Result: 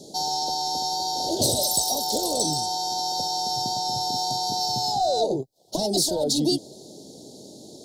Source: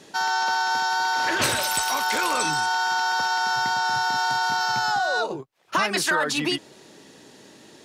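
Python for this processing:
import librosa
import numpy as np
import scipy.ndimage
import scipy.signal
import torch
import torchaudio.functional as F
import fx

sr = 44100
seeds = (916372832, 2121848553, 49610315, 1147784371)

p1 = fx.rider(x, sr, range_db=4, speed_s=0.5)
p2 = x + F.gain(torch.from_numpy(p1), 0.0).numpy()
p3 = 10.0 ** (-10.5 / 20.0) * np.tanh(p2 / 10.0 ** (-10.5 / 20.0))
y = scipy.signal.sosfilt(scipy.signal.ellip(3, 1.0, 40, [710.0, 4100.0], 'bandstop', fs=sr, output='sos'), p3)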